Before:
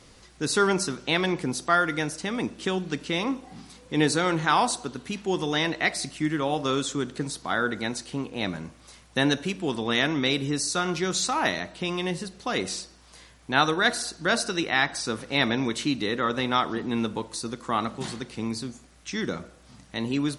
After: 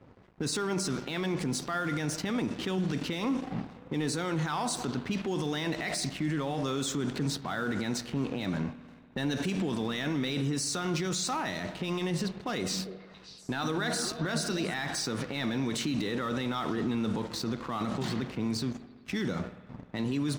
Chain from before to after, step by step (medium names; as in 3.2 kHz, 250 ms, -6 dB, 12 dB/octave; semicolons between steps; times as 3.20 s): Chebyshev band-pass 110–8800 Hz, order 2; level-controlled noise filter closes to 970 Hz, open at -24 dBFS; bass shelf 260 Hz +5.5 dB; waveshaping leveller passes 1; peak limiter -28.5 dBFS, peak gain reduction 23 dB; crossover distortion -58 dBFS; 12.57–14.74 s: repeats whose band climbs or falls 143 ms, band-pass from 190 Hz, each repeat 1.4 oct, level -3 dB; spring tank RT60 2 s, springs 58 ms, chirp 50 ms, DRR 15.5 dB; trim +5.5 dB